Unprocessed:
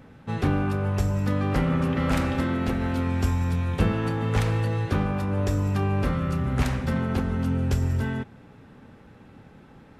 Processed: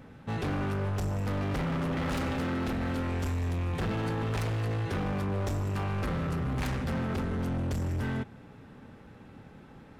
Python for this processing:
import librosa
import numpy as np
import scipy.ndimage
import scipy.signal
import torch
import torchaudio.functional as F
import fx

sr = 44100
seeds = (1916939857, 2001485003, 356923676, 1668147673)

y = np.clip(10.0 ** (27.5 / 20.0) * x, -1.0, 1.0) / 10.0 ** (27.5 / 20.0)
y = y * 10.0 ** (-1.0 / 20.0)